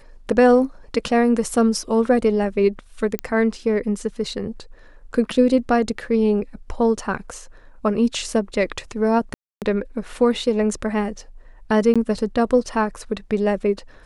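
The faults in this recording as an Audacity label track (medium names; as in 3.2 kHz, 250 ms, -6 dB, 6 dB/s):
3.190000	3.190000	pop -9 dBFS
9.340000	9.620000	dropout 278 ms
11.940000	11.960000	dropout 16 ms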